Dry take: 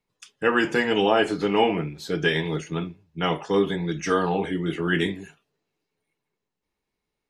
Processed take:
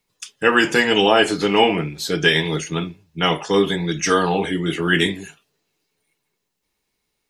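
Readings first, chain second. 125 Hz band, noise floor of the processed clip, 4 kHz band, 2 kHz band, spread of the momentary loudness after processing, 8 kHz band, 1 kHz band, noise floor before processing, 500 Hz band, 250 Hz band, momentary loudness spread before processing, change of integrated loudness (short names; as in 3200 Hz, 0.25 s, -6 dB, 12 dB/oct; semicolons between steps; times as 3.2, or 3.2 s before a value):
+4.0 dB, -76 dBFS, +10.0 dB, +7.0 dB, 9 LU, +13.0 dB, +5.0 dB, -83 dBFS, +4.5 dB, +4.0 dB, 9 LU, +5.5 dB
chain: high shelf 2700 Hz +10.5 dB; gain +4 dB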